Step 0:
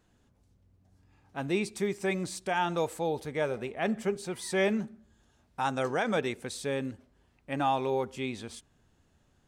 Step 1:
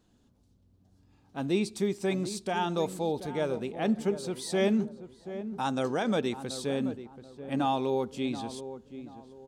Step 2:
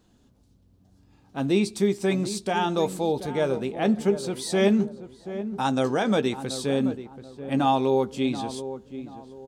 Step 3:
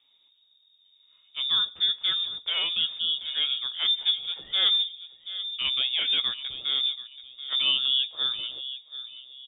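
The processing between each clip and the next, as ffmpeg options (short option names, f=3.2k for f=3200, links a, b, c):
-filter_complex "[0:a]equalizer=f=250:t=o:w=1:g=6,equalizer=f=2k:t=o:w=1:g=-6,equalizer=f=4k:t=o:w=1:g=5,asplit=2[a][b];[b]adelay=732,lowpass=f=1.1k:p=1,volume=-11dB,asplit=2[c][d];[d]adelay=732,lowpass=f=1.1k:p=1,volume=0.35,asplit=2[e][f];[f]adelay=732,lowpass=f=1.1k:p=1,volume=0.35,asplit=2[g][h];[h]adelay=732,lowpass=f=1.1k:p=1,volume=0.35[i];[a][c][e][g][i]amix=inputs=5:normalize=0,volume=-1dB"
-filter_complex "[0:a]asplit=2[a][b];[b]adelay=15,volume=-12dB[c];[a][c]amix=inputs=2:normalize=0,volume=5dB"
-af "lowpass=f=3.2k:t=q:w=0.5098,lowpass=f=3.2k:t=q:w=0.6013,lowpass=f=3.2k:t=q:w=0.9,lowpass=f=3.2k:t=q:w=2.563,afreqshift=-3800,volume=-3dB"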